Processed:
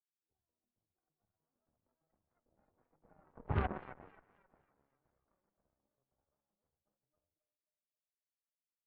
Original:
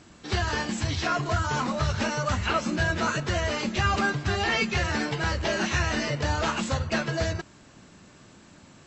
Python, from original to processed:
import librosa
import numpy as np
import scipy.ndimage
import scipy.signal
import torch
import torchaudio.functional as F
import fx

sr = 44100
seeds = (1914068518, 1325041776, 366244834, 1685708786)

y = fx.doppler_pass(x, sr, speed_mps=26, closest_m=1.8, pass_at_s=3.59)
y = fx.dynamic_eq(y, sr, hz=530.0, q=1.6, threshold_db=-53.0, ratio=4.0, max_db=-3)
y = fx.ladder_lowpass(y, sr, hz=850.0, resonance_pct=25)
y = fx.echo_thinned(y, sr, ms=268, feedback_pct=69, hz=630.0, wet_db=-3.0)
y = fx.cheby_harmonics(y, sr, harmonics=(3, 4, 6, 7), levels_db=(-35, -13, -13, -17), full_scale_db=-23.5)
y = y * librosa.db_to_amplitude(1.0)